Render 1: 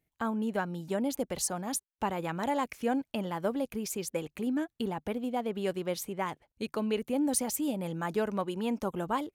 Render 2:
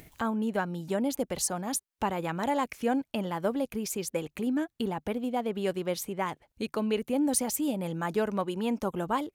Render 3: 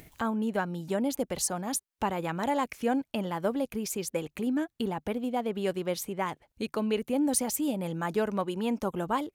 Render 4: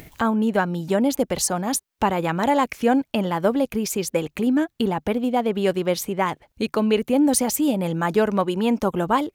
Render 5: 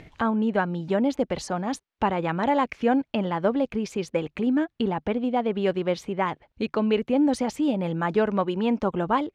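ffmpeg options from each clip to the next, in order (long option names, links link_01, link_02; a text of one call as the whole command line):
ffmpeg -i in.wav -af "acompressor=mode=upward:threshold=-35dB:ratio=2.5,volume=2dB" out.wav
ffmpeg -i in.wav -af anull out.wav
ffmpeg -i in.wav -af "equalizer=frequency=10000:width_type=o:width=0.96:gain=-3.5,volume=9dB" out.wav
ffmpeg -i in.wav -af "lowpass=3600,volume=-3dB" out.wav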